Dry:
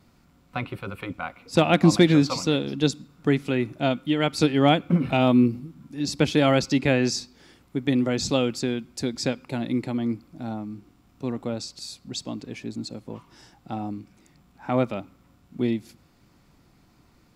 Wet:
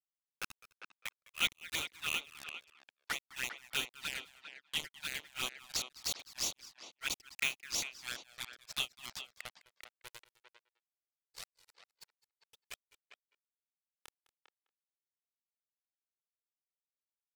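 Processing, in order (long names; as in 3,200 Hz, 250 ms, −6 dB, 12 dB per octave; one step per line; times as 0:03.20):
inverse Chebyshev high-pass filter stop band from 700 Hz, stop band 40 dB
high-shelf EQ 7,700 Hz −8 dB
in parallel at +2.5 dB: downward compressor 10 to 1, threshold −42 dBFS, peak gain reduction 20 dB
on the sum: bad sample-rate conversion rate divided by 2×, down none, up hold
bit reduction 5 bits
granular cloud 226 ms, grains 3 per second, spray 716 ms, pitch spread up and down by 0 semitones
on a send: single-tap delay 207 ms −20 dB
on the sum: flanger swept by the level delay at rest 2.4 ms, full sweep at −30.5 dBFS
far-end echo of a speakerphone 400 ms, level −9 dB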